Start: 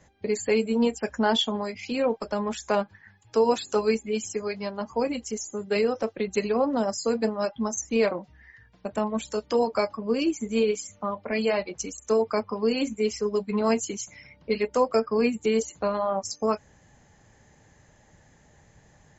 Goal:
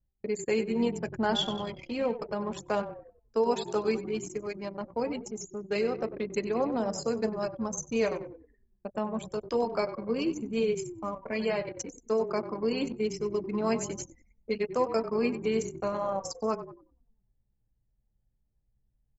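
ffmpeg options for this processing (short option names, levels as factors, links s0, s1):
-filter_complex "[0:a]asplit=9[s0][s1][s2][s3][s4][s5][s6][s7][s8];[s1]adelay=95,afreqshift=-31,volume=0.282[s9];[s2]adelay=190,afreqshift=-62,volume=0.178[s10];[s3]adelay=285,afreqshift=-93,volume=0.112[s11];[s4]adelay=380,afreqshift=-124,volume=0.0708[s12];[s5]adelay=475,afreqshift=-155,volume=0.0442[s13];[s6]adelay=570,afreqshift=-186,volume=0.0279[s14];[s7]adelay=665,afreqshift=-217,volume=0.0176[s15];[s8]adelay=760,afreqshift=-248,volume=0.0111[s16];[s0][s9][s10][s11][s12][s13][s14][s15][s16]amix=inputs=9:normalize=0,anlmdn=10,volume=0.562"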